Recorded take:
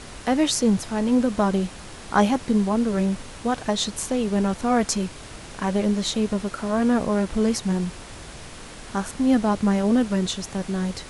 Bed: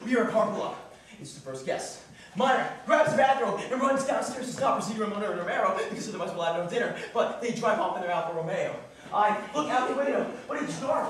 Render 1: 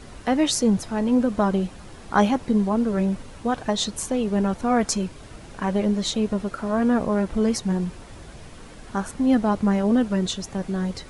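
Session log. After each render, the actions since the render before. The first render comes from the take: noise reduction 8 dB, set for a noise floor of -40 dBFS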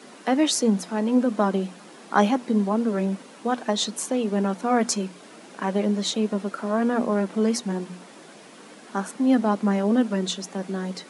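steep high-pass 190 Hz 36 dB/octave; hum notches 60/120/180/240 Hz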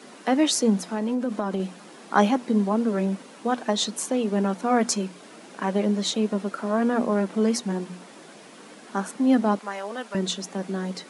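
0.78–1.60 s: compression, threshold -22 dBFS; 9.59–10.15 s: high-pass 760 Hz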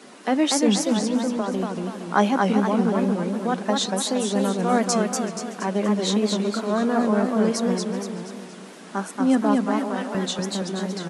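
echo from a far wall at 65 m, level -14 dB; modulated delay 237 ms, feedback 48%, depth 166 cents, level -3 dB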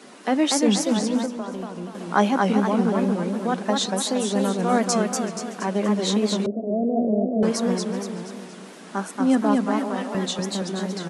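1.26–1.95 s: feedback comb 58 Hz, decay 0.64 s; 6.46–7.43 s: Chebyshev band-pass 110–700 Hz, order 5; 9.94–10.58 s: band-stop 1.5 kHz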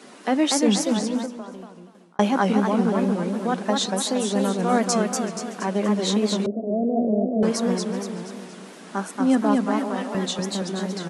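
0.83–2.19 s: fade out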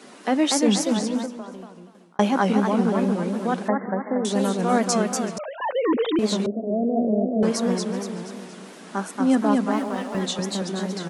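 3.68–4.25 s: brick-wall FIR low-pass 2.2 kHz; 5.38–6.19 s: formants replaced by sine waves; 9.72–10.21 s: companding laws mixed up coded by A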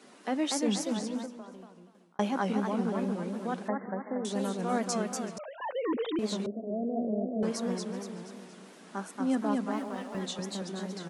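trim -9.5 dB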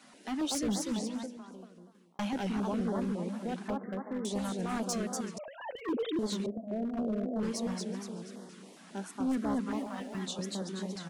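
hard clipper -27 dBFS, distortion -13 dB; step-sequenced notch 7.3 Hz 410–2500 Hz

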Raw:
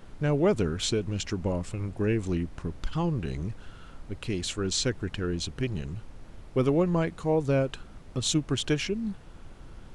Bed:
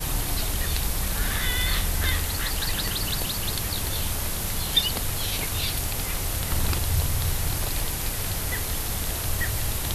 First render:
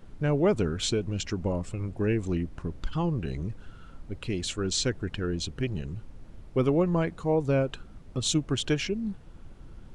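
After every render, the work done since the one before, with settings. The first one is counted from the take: noise reduction 6 dB, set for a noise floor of -48 dBFS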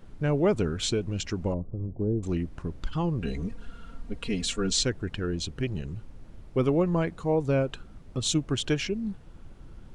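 1.54–2.23 s: Gaussian low-pass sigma 12 samples; 3.21–4.83 s: comb 4.3 ms, depth 93%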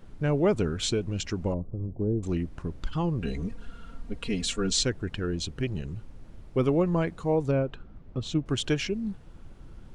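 7.51–8.46 s: tape spacing loss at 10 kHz 24 dB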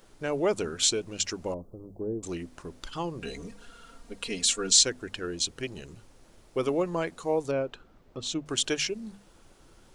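tone controls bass -13 dB, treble +10 dB; hum notches 50/100/150/200/250 Hz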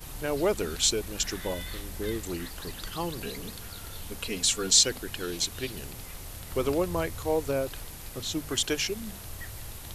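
add bed -14 dB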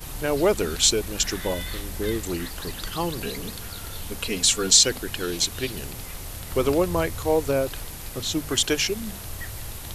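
trim +5.5 dB; peak limiter -3 dBFS, peak gain reduction 3 dB

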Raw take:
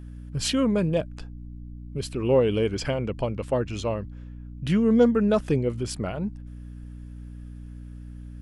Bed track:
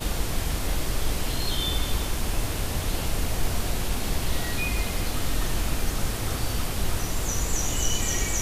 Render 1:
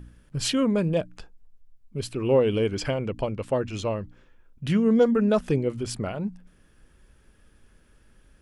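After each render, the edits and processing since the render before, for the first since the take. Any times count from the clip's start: de-hum 60 Hz, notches 5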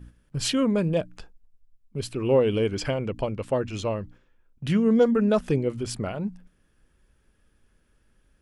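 gate -46 dBFS, range -7 dB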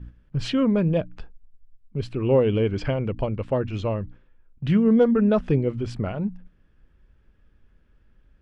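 low-pass 3.3 kHz 12 dB/octave; bass shelf 170 Hz +7.5 dB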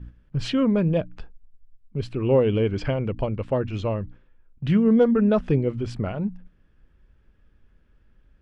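no audible change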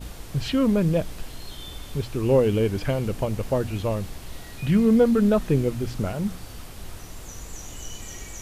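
add bed track -12 dB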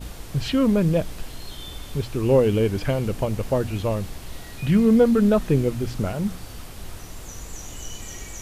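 trim +1.5 dB

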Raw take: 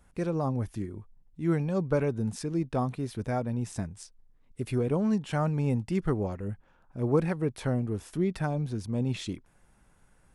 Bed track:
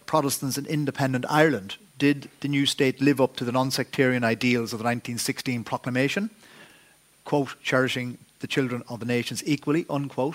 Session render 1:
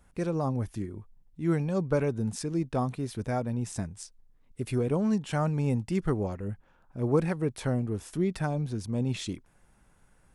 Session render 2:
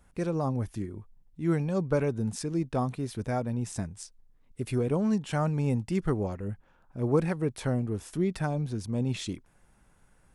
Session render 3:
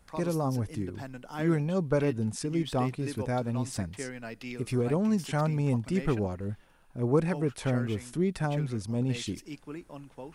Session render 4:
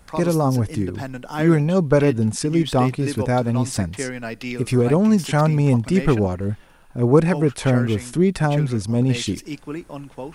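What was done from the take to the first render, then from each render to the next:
dynamic bell 7.7 kHz, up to +4 dB, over -56 dBFS, Q 0.81
no audible change
add bed track -17.5 dB
trim +10.5 dB

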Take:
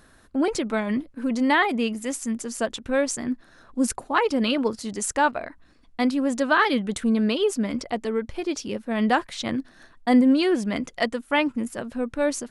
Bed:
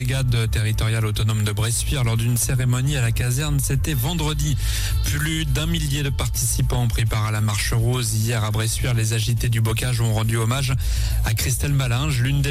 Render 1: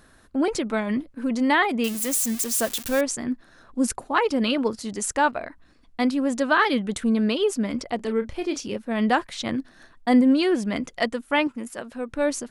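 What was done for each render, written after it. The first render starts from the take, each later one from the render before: 1.84–3.01 s: zero-crossing glitches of -20 dBFS; 7.96–8.76 s: doubling 31 ms -9.5 dB; 11.47–12.09 s: bass shelf 270 Hz -10.5 dB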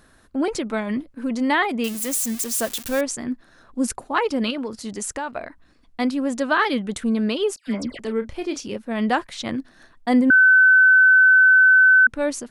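4.50–5.32 s: compression, threshold -24 dBFS; 7.56–7.99 s: phase dispersion lows, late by 111 ms, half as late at 1.8 kHz; 10.30–12.07 s: bleep 1.52 kHz -9.5 dBFS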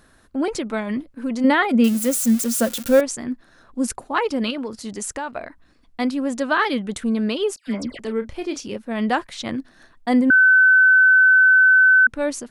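1.44–3.00 s: small resonant body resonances 230/520/1400 Hz, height 11 dB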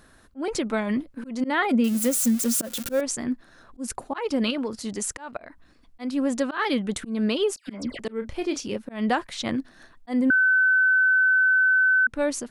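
slow attack 206 ms; compression, threshold -18 dBFS, peak gain reduction 7 dB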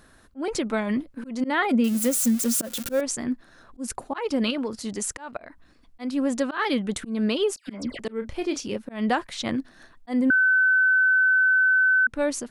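no audible change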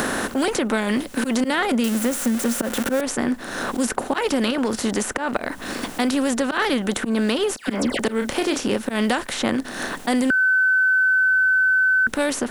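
spectral levelling over time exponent 0.6; three bands compressed up and down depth 100%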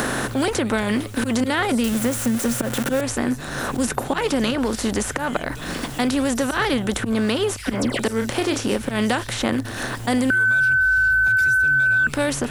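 add bed -14.5 dB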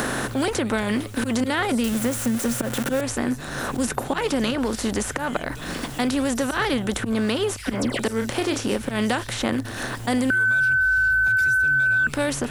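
trim -2 dB

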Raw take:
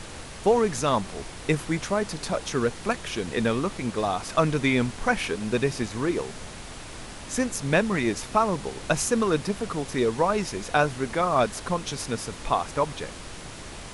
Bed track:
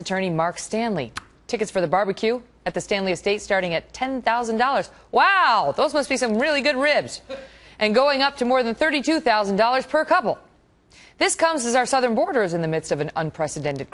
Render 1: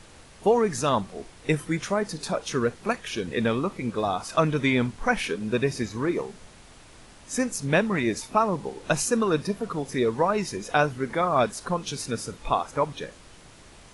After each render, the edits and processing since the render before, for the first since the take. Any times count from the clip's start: noise print and reduce 10 dB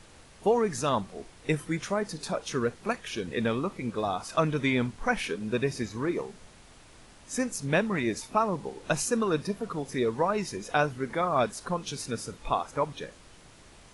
trim -3.5 dB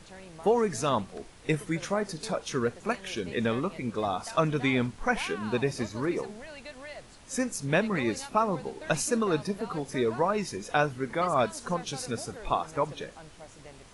add bed track -24.5 dB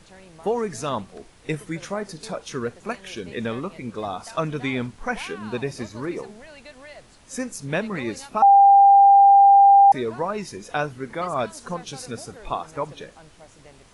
8.42–9.92 s: bleep 796 Hz -8.5 dBFS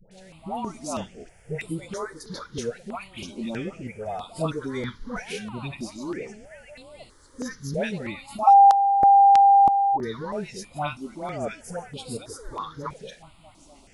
phase dispersion highs, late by 115 ms, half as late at 930 Hz; stepped phaser 3.1 Hz 300–6000 Hz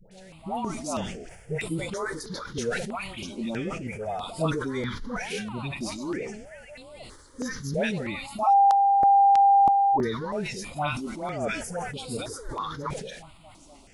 peak limiter -14 dBFS, peak gain reduction 7 dB; decay stretcher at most 52 dB/s

